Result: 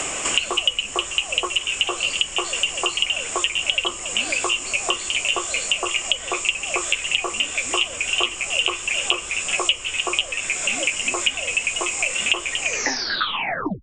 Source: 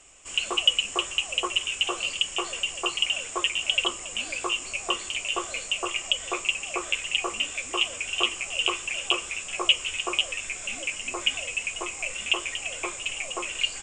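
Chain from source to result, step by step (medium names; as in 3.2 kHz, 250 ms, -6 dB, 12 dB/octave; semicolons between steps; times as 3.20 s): tape stop on the ending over 1.22 s; three bands compressed up and down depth 100%; trim +4 dB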